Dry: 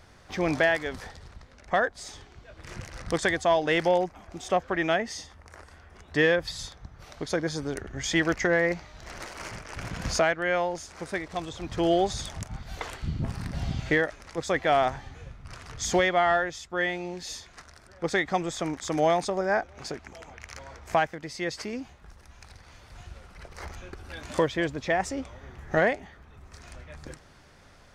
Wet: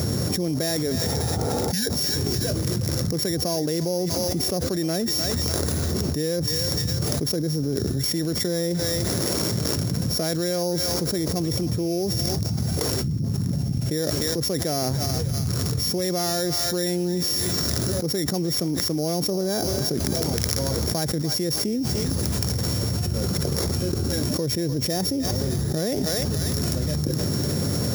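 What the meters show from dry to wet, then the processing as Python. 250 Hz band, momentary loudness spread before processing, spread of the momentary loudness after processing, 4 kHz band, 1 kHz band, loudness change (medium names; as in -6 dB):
+7.5 dB, 21 LU, 2 LU, +11.5 dB, -6.0 dB, +4.0 dB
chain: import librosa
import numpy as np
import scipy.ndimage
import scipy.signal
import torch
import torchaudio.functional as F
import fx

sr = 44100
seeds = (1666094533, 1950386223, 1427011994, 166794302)

y = np.r_[np.sort(x[:len(x) // 8 * 8].reshape(-1, 8), axis=1).ravel(), x[len(x) // 8 * 8:]]
y = fx.low_shelf(y, sr, hz=180.0, db=12.0)
y = fx.spec_repair(y, sr, seeds[0], start_s=1.14, length_s=0.7, low_hz=260.0, high_hz=1500.0, source='before')
y = scipy.signal.sosfilt(scipy.signal.butter(4, 110.0, 'highpass', fs=sr, output='sos'), y)
y = fx.band_shelf(y, sr, hz=1600.0, db=-13.0, octaves=2.8)
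y = fx.echo_thinned(y, sr, ms=299, feedback_pct=39, hz=1100.0, wet_db=-15.5)
y = fx.env_flatten(y, sr, amount_pct=100)
y = y * librosa.db_to_amplitude(-5.5)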